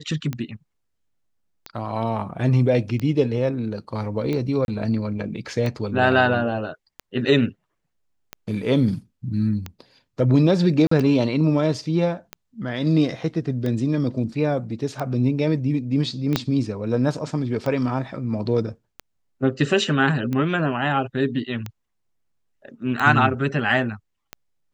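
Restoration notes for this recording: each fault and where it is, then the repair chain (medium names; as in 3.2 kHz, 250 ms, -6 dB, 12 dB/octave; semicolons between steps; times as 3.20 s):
tick 45 rpm -15 dBFS
4.65–4.68 s: dropout 31 ms
10.87–10.91 s: dropout 44 ms
16.36 s: pop -5 dBFS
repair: de-click; interpolate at 4.65 s, 31 ms; interpolate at 10.87 s, 44 ms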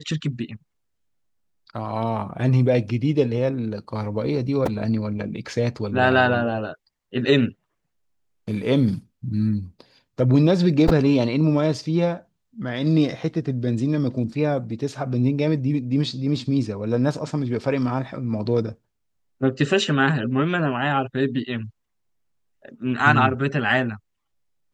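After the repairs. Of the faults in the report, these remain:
16.36 s: pop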